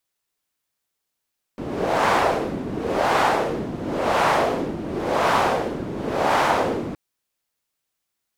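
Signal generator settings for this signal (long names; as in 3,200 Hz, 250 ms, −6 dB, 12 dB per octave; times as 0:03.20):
wind from filtered noise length 5.37 s, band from 260 Hz, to 920 Hz, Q 1.5, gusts 5, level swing 11 dB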